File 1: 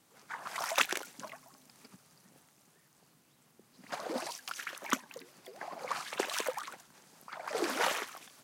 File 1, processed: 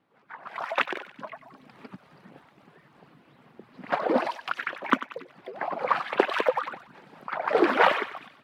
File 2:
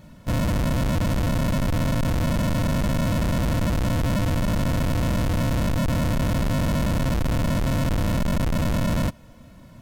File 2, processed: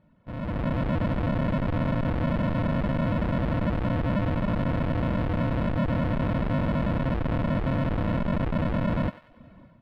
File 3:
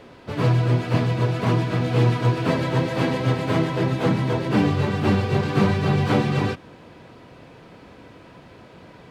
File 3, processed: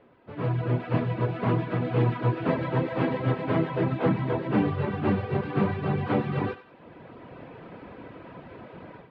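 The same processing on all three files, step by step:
reverb removal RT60 0.54 s; low shelf 120 Hz -8 dB; AGC gain up to 15.5 dB; air absorption 470 m; thinning echo 94 ms, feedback 48%, high-pass 820 Hz, level -12 dB; match loudness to -27 LUFS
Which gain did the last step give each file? +1.0, -12.0, -9.5 dB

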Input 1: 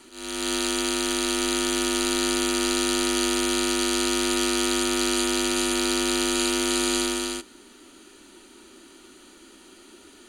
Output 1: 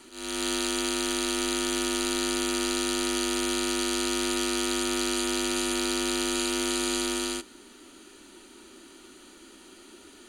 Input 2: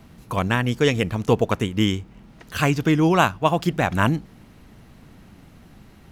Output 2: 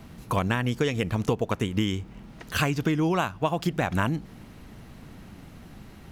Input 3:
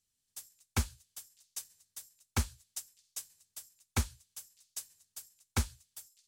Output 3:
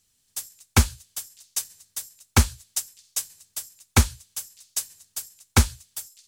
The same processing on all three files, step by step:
compressor 10:1, threshold -23 dBFS; match loudness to -27 LUFS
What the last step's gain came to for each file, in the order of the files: -0.5, +2.0, +14.0 dB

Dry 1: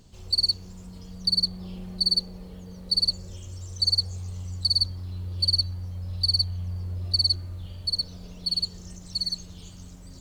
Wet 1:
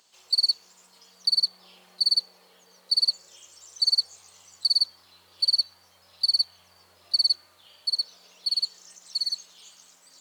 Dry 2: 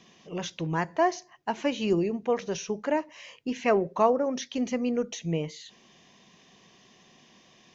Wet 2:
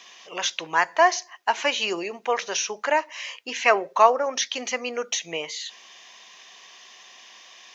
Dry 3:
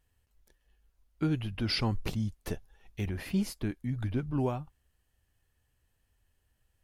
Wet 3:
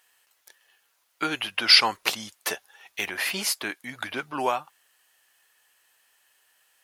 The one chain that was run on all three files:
HPF 950 Hz 12 dB/oct; match loudness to -24 LUFS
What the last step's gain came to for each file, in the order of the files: +1.0, +12.0, +17.0 dB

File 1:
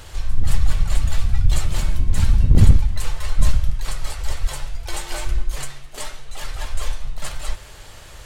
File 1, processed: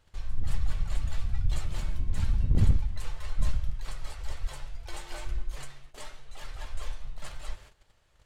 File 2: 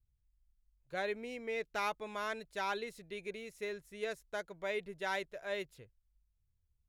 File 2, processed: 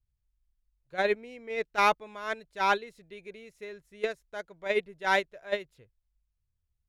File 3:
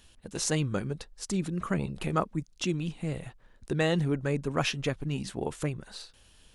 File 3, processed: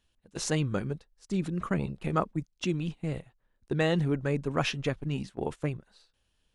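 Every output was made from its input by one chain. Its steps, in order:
gate -35 dBFS, range -15 dB; high shelf 6600 Hz -8 dB; normalise peaks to -12 dBFS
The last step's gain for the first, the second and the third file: -11.0, +13.5, +0.5 dB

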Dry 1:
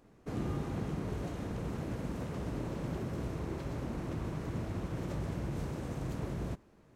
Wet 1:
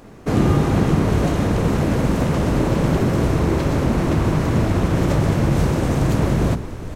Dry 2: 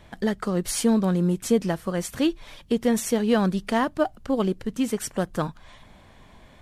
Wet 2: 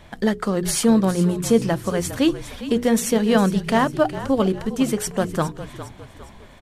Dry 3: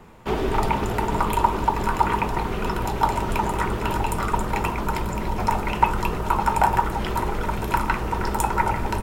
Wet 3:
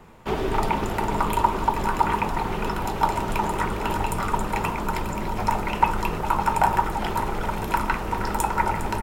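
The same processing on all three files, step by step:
notches 60/120/180/240/300/360/420/480 Hz; frequency-shifting echo 0.407 s, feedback 44%, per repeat -45 Hz, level -13 dB; normalise peaks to -3 dBFS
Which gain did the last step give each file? +20.0, +4.5, -1.0 dB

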